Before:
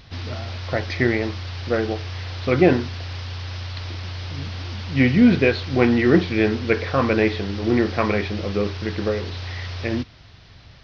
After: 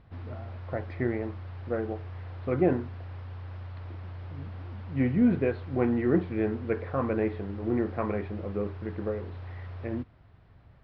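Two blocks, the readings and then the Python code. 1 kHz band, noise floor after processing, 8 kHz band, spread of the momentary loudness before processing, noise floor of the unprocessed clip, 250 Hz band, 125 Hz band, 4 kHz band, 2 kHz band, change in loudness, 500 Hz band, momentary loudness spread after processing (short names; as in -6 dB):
-10.0 dB, -56 dBFS, n/a, 14 LU, -47 dBFS, -8.5 dB, -8.5 dB, under -25 dB, -16.0 dB, -8.5 dB, -8.5 dB, 15 LU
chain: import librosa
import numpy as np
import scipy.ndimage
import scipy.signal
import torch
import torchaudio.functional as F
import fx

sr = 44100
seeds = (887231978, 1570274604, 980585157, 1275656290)

y = scipy.signal.sosfilt(scipy.signal.butter(2, 1300.0, 'lowpass', fs=sr, output='sos'), x)
y = y * 10.0 ** (-8.5 / 20.0)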